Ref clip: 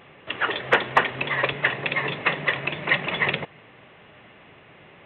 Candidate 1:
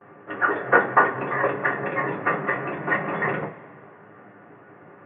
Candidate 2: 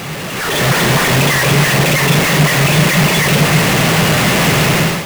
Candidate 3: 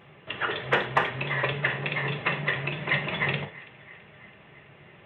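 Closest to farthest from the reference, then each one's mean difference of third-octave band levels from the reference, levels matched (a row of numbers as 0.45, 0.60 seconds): 3, 1, 2; 2.0, 4.5, 17.0 decibels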